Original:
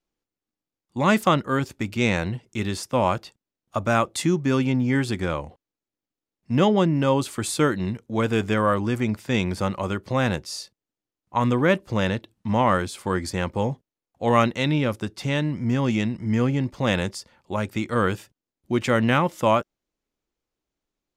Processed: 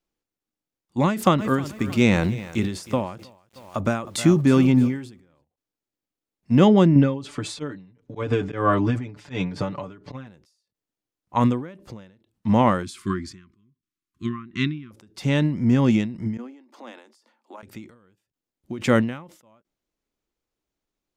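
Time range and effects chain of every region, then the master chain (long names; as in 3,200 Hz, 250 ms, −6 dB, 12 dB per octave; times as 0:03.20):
0:01.07–0:05.44: transient designer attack +1 dB, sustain +5 dB + feedback echo at a low word length 313 ms, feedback 35%, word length 7 bits, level −14.5 dB
0:06.95–0:10.27: volume swells 182 ms + high-frequency loss of the air 100 metres + comb filter 6.9 ms, depth 89%
0:12.83–0:14.91: treble cut that deepens with the level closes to 1,700 Hz, closed at −14.5 dBFS + linear-phase brick-wall band-stop 400–1,000 Hz
0:16.37–0:17.63: downward compressor 3 to 1, threshold −36 dBFS + Chebyshev high-pass with heavy ripple 220 Hz, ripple 6 dB
whole clip: dynamic equaliser 220 Hz, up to +6 dB, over −33 dBFS, Q 0.74; every ending faded ahead of time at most 100 dB per second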